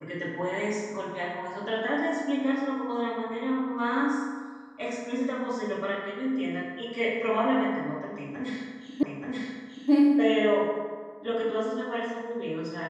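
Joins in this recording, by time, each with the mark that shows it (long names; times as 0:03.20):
0:09.03: the same again, the last 0.88 s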